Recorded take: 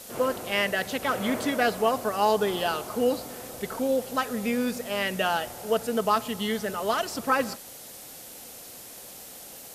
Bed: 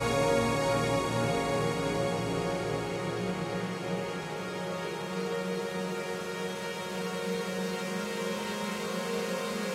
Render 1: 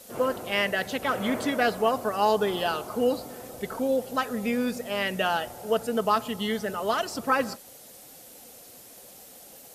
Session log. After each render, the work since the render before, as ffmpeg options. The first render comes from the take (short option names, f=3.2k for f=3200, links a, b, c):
-af "afftdn=nr=6:nf=-44"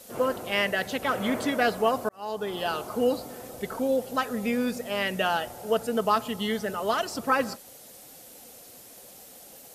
-filter_complex "[0:a]asplit=2[a][b];[a]atrim=end=2.09,asetpts=PTS-STARTPTS,afade=t=out:st=2.086:d=0.004:c=hsin[c];[b]atrim=start=2.09,asetpts=PTS-STARTPTS,afade=t=in:d=0.72[d];[c][d]concat=n=2:v=0:a=1"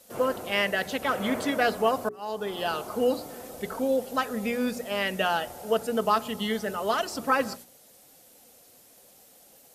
-af "agate=range=-7dB:threshold=-44dB:ratio=16:detection=peak,bandreject=f=60:t=h:w=6,bandreject=f=120:t=h:w=6,bandreject=f=180:t=h:w=6,bandreject=f=240:t=h:w=6,bandreject=f=300:t=h:w=6,bandreject=f=360:t=h:w=6,bandreject=f=420:t=h:w=6"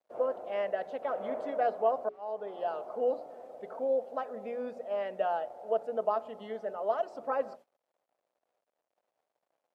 -af "aeval=exprs='val(0)*gte(abs(val(0)),0.00447)':c=same,bandpass=f=630:t=q:w=2.8:csg=0"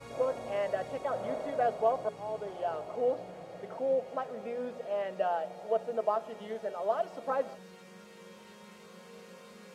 -filter_complex "[1:a]volume=-18.5dB[a];[0:a][a]amix=inputs=2:normalize=0"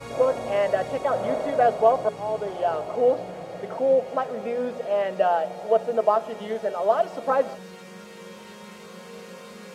-af "volume=9.5dB"